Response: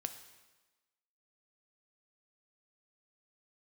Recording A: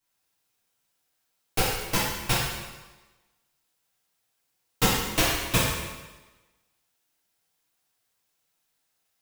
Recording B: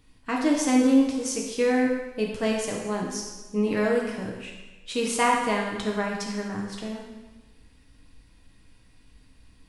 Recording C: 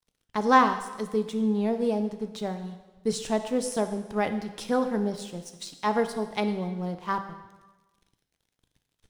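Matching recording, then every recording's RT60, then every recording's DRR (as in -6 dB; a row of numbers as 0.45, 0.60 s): C; 1.2, 1.2, 1.2 s; -10.0, -1.5, 7.5 dB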